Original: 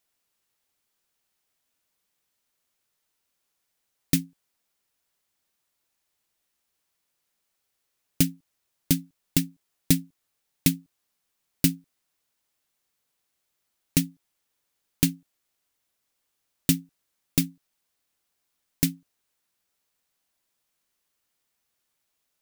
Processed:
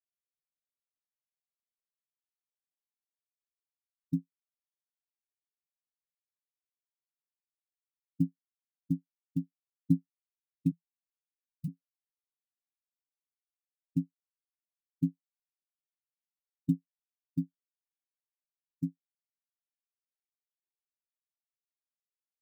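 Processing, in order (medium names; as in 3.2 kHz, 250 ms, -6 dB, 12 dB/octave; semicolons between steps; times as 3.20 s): 10.71–11.68 s: elliptic band-stop 160–1000 Hz; spectral contrast expander 2.5:1; trim -8.5 dB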